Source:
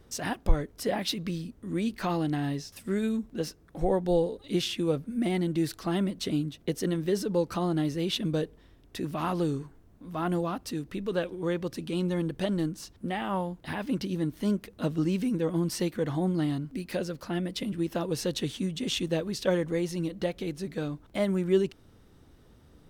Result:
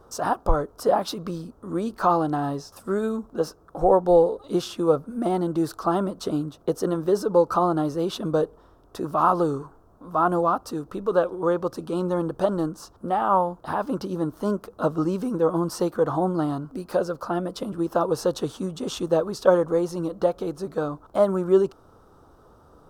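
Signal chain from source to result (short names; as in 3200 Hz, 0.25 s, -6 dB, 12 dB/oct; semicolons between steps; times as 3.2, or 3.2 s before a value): EQ curve 240 Hz 0 dB, 470 Hz +9 dB, 1300 Hz +15 dB, 2000 Hz -11 dB, 5200 Hz 0 dB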